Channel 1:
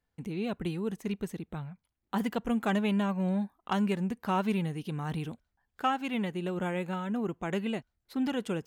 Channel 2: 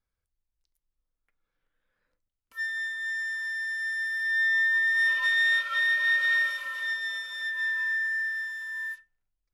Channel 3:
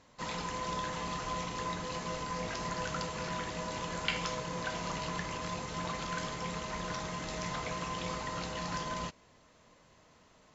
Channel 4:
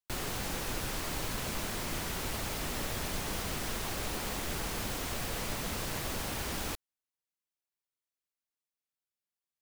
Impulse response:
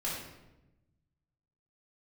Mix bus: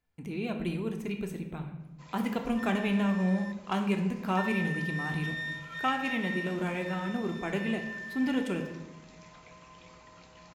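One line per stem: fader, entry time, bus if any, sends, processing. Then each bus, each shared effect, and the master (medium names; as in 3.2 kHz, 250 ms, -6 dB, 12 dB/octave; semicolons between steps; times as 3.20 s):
-4.0 dB, 0.00 s, send -5.5 dB, none
-13.5 dB, 0.00 s, muted 3.52–4.37 s, no send, endings held to a fixed fall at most 100 dB/s
-18.0 dB, 1.80 s, send -12.5 dB, none
mute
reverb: on, RT60 1.0 s, pre-delay 3 ms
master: peaking EQ 2.4 kHz +6.5 dB 0.2 oct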